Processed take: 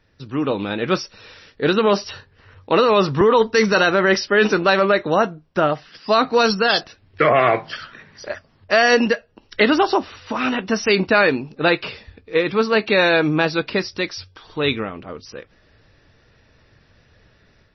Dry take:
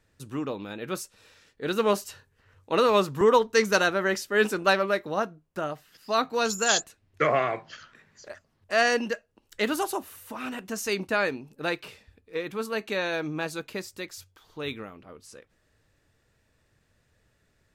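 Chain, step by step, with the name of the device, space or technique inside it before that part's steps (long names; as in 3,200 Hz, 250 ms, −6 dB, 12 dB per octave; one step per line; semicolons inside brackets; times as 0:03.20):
low-bitrate web radio (automatic gain control gain up to 7 dB; brickwall limiter −12 dBFS, peak gain reduction 8.5 dB; level +7 dB; MP3 24 kbit/s 22,050 Hz)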